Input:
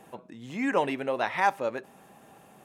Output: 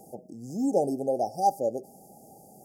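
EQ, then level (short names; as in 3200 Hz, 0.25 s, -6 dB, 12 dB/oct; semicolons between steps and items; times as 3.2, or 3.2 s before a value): brick-wall FIR band-stop 850–4600 Hz; high shelf 9800 Hz +10.5 dB; +2.5 dB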